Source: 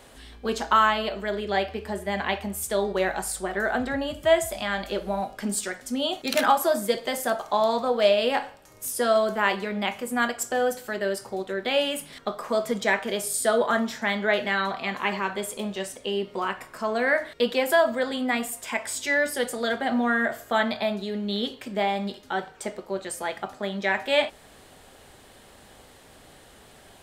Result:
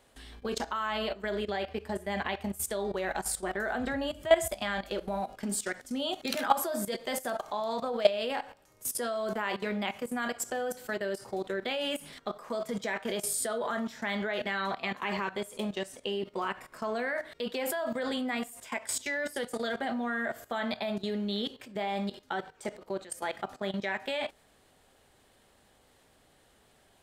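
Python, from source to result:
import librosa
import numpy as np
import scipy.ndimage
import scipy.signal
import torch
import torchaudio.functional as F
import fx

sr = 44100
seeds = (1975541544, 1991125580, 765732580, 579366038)

y = fx.level_steps(x, sr, step_db=16)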